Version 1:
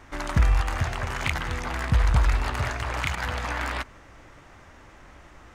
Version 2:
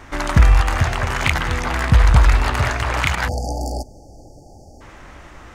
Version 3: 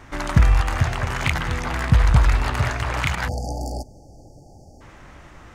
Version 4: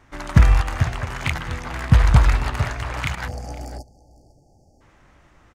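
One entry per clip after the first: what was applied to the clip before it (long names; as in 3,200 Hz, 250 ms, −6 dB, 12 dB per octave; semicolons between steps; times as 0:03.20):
time-frequency box erased 0:03.28–0:04.81, 870–4,400 Hz; level +8.5 dB
parametric band 140 Hz +5 dB 1.1 octaves; level −4.5 dB
single-tap delay 501 ms −18 dB; expander for the loud parts 1.5 to 1, over −35 dBFS; level +3 dB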